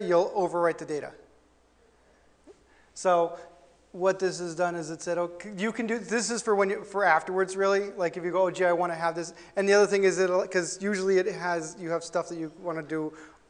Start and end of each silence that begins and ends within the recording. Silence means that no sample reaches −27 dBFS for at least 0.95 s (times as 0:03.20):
0:01.05–0:03.05